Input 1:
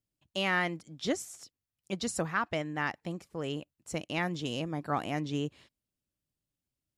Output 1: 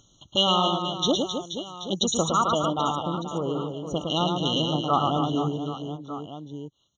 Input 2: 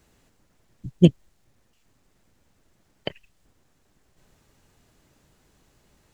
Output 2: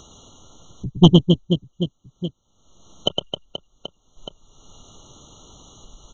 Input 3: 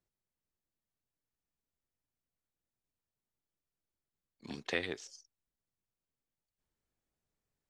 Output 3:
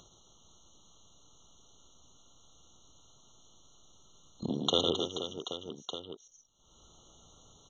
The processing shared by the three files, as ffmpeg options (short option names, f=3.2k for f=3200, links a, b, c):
-filter_complex "[0:a]afwtdn=0.00794,tiltshelf=f=1.4k:g=-5.5,asplit=2[a][b];[b]aecho=0:1:110|264|479.6|781.4|1204:0.631|0.398|0.251|0.158|0.1[c];[a][c]amix=inputs=2:normalize=0,acompressor=mode=upward:threshold=-37dB:ratio=2.5,aresample=16000,aeval=exprs='0.531*sin(PI/2*1.58*val(0)/0.531)':c=same,aresample=44100,afftfilt=real='re*eq(mod(floor(b*sr/1024/1400),2),0)':imag='im*eq(mod(floor(b*sr/1024/1400),2),0)':win_size=1024:overlap=0.75,volume=3.5dB"